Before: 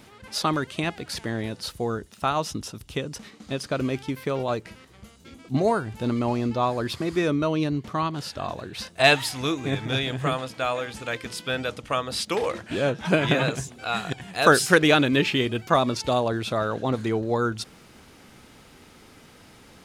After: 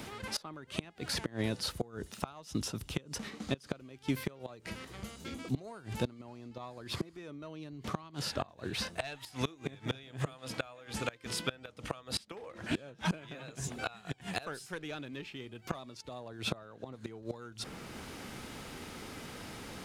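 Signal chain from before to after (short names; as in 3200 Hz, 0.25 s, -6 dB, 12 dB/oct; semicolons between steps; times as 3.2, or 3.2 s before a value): one diode to ground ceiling -8.5 dBFS; flipped gate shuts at -19 dBFS, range -25 dB; three-band squash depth 40%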